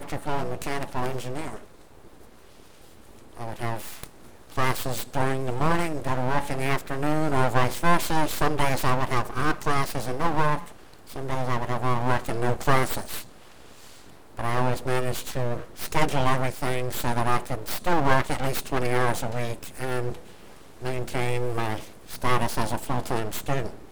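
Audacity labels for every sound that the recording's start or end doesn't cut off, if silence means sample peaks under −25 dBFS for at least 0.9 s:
3.400000	13.200000	sound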